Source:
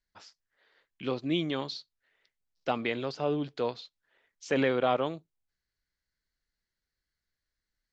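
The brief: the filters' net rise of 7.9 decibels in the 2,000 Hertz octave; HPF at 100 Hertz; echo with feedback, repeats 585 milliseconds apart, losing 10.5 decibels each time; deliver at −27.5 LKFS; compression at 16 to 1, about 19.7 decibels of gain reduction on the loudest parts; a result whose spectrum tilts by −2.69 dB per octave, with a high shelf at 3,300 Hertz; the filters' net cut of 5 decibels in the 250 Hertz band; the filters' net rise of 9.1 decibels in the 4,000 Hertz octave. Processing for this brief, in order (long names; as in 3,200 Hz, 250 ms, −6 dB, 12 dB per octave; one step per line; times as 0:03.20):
high-pass filter 100 Hz
parametric band 250 Hz −6.5 dB
parametric band 2,000 Hz +6.5 dB
high-shelf EQ 3,300 Hz +4 dB
parametric band 4,000 Hz +6.5 dB
downward compressor 16 to 1, threshold −40 dBFS
repeating echo 585 ms, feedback 30%, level −10.5 dB
level +18 dB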